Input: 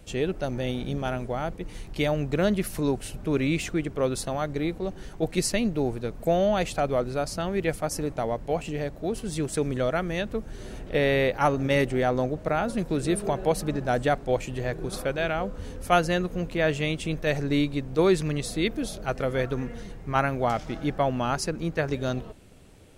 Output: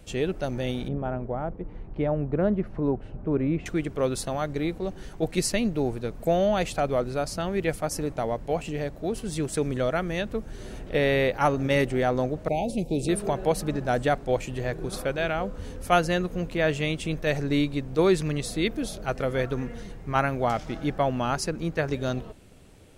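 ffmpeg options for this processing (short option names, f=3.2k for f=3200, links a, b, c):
-filter_complex "[0:a]asettb=1/sr,asplit=3[a][b][c];[a]atrim=end=0.884[d];[b]atrim=start=0.88:end=3.66,asetpts=PTS-STARTPTS,afade=t=in:d=0.004:c=qsin,afade=t=out:st=2.776:d=0.004:c=qsin,lowpass=1.1k[e];[c]atrim=start=3.656[f];[d][e]acrossfade=d=0.004:c1=hsin:c2=qsin[g];[g][f]acrossfade=d=0.004:c1=qsin:c2=hsin,asettb=1/sr,asplit=3[h][i][j];[h]atrim=end=12.484[k];[i]atrim=start=12.48:end=13.09,asetpts=PTS-STARTPTS,afade=t=in:d=0.004:c=qsin,afade=t=out:st=0.606:d=0.004:c=qsin,asuperstop=centerf=1400:order=12:qfactor=1[l];[j]atrim=start=13.086[m];[k][l]acrossfade=d=0.004:c1=hsin:c2=qsin[n];[n][m]acrossfade=d=0.004:c1=qsin:c2=hsin"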